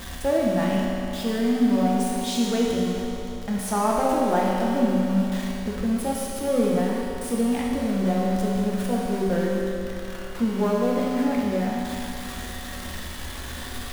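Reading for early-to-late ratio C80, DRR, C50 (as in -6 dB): 0.0 dB, -4.5 dB, -1.5 dB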